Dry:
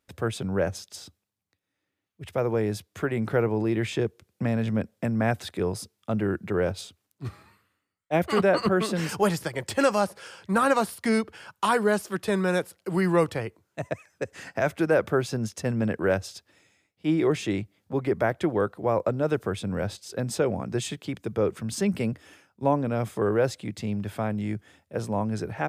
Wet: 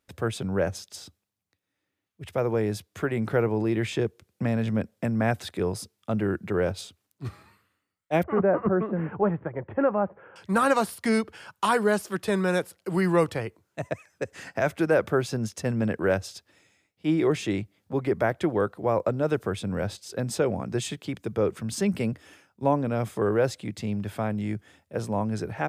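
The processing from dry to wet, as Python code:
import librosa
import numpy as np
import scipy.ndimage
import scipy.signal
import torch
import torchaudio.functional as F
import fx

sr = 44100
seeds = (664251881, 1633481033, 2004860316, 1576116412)

y = fx.gaussian_blur(x, sr, sigma=5.6, at=(8.23, 10.36))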